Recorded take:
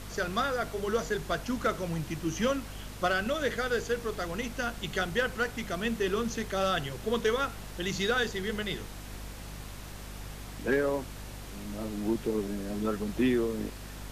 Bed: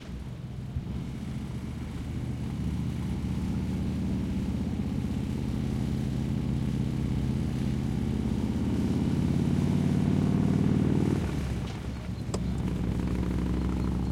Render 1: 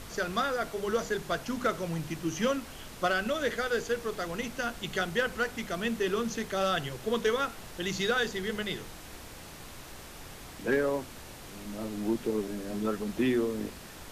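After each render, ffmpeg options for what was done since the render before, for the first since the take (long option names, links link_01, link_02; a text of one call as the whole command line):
ffmpeg -i in.wav -af "bandreject=frequency=50:width_type=h:width=4,bandreject=frequency=100:width_type=h:width=4,bandreject=frequency=150:width_type=h:width=4,bandreject=frequency=200:width_type=h:width=4,bandreject=frequency=250:width_type=h:width=4" out.wav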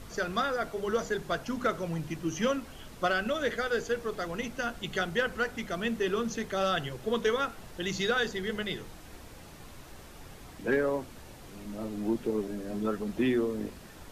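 ffmpeg -i in.wav -af "afftdn=noise_reduction=6:noise_floor=-46" out.wav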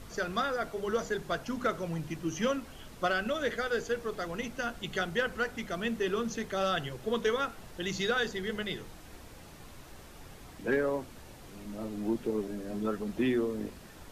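ffmpeg -i in.wav -af "volume=-1.5dB" out.wav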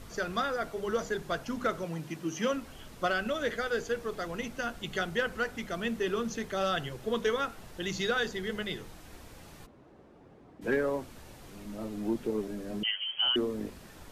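ffmpeg -i in.wav -filter_complex "[0:a]asettb=1/sr,asplit=3[link_01][link_02][link_03];[link_01]atrim=end=1.844[link_04];[link_02]atrim=start=1.84:end=2.53,asetpts=PTS-STARTPTS,afade=type=in:duration=0.004:curve=qsin,afade=type=out:start_time=0.686:duration=0.004:curve=qsin,highpass=150[link_05];[link_03]atrim=start=2.526[link_06];[link_04][link_05]acrossfade=duration=0.004:curve1=hsin:curve2=qsin[link_07];[link_07][link_06]acrossfade=duration=0.004:curve1=qsin:curve2=hsin,asplit=3[link_08][link_09][link_10];[link_08]afade=type=out:start_time=9.65:duration=0.02[link_11];[link_09]bandpass=frequency=340:width_type=q:width=0.79,afade=type=in:start_time=9.65:duration=0.02,afade=type=out:start_time=10.61:duration=0.02[link_12];[link_10]afade=type=in:start_time=10.61:duration=0.02[link_13];[link_11][link_12][link_13]amix=inputs=3:normalize=0,asettb=1/sr,asplit=3[link_14][link_15][link_16];[link_14]atrim=end=12.834[link_17];[link_15]atrim=start=12.83:end=13.36,asetpts=PTS-STARTPTS,afade=type=in:duration=0.004:curve=qsin,afade=type=out:start_time=0.526:duration=0.004:curve=qsin,lowpass=frequency=2800:width_type=q:width=0.5098,lowpass=frequency=2800:width_type=q:width=0.6013,lowpass=frequency=2800:width_type=q:width=0.9,lowpass=frequency=2800:width_type=q:width=2.563,afreqshift=-3300[link_18];[link_16]atrim=start=13.356[link_19];[link_17][link_18]acrossfade=duration=0.004:curve1=hsin:curve2=qsin[link_20];[link_20][link_19]acrossfade=duration=0.004:curve1=qsin:curve2=hsin" out.wav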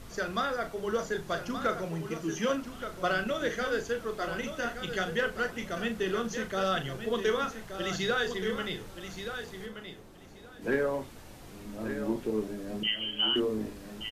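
ffmpeg -i in.wav -filter_complex "[0:a]asplit=2[link_01][link_02];[link_02]adelay=37,volume=-9dB[link_03];[link_01][link_03]amix=inputs=2:normalize=0,aecho=1:1:1175|2350|3525:0.355|0.0603|0.0103" out.wav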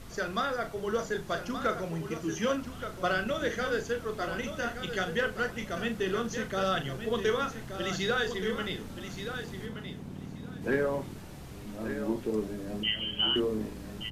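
ffmpeg -i in.wav -i bed.wav -filter_complex "[1:a]volume=-17dB[link_01];[0:a][link_01]amix=inputs=2:normalize=0" out.wav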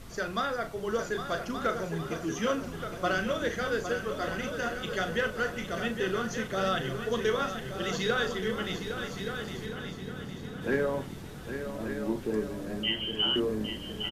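ffmpeg -i in.wav -af "aecho=1:1:810|1620|2430|3240|4050|4860:0.355|0.185|0.0959|0.0499|0.0259|0.0135" out.wav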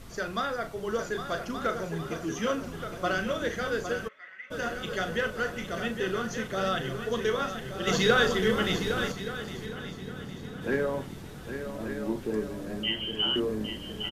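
ffmpeg -i in.wav -filter_complex "[0:a]asplit=3[link_01][link_02][link_03];[link_01]afade=type=out:start_time=4.07:duration=0.02[link_04];[link_02]bandpass=frequency=2000:width_type=q:width=8.3,afade=type=in:start_time=4.07:duration=0.02,afade=type=out:start_time=4.5:duration=0.02[link_05];[link_03]afade=type=in:start_time=4.5:duration=0.02[link_06];[link_04][link_05][link_06]amix=inputs=3:normalize=0,asettb=1/sr,asplit=3[link_07][link_08][link_09];[link_07]atrim=end=7.874[link_10];[link_08]atrim=start=7.87:end=9.12,asetpts=PTS-STARTPTS,afade=type=in:duration=0.004:curve=qsin,afade=type=out:start_time=1.246:duration=0.004:curve=qsin,acontrast=57[link_11];[link_09]atrim=start=9.116[link_12];[link_10][link_11]acrossfade=duration=0.004:curve1=hsin:curve2=qsin[link_13];[link_13][link_12]acrossfade=duration=0.004:curve1=qsin:curve2=hsin" out.wav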